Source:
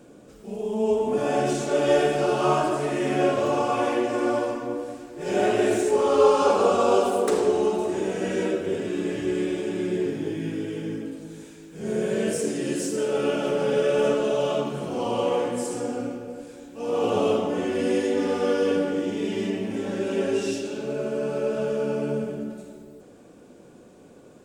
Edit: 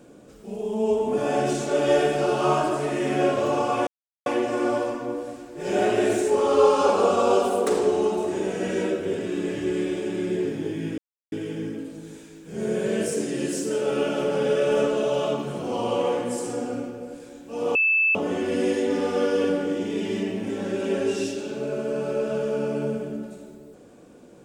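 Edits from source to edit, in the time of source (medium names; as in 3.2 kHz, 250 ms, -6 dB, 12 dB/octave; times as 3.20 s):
3.87 s: insert silence 0.39 s
10.59 s: insert silence 0.34 s
17.02–17.42 s: bleep 2.63 kHz -17 dBFS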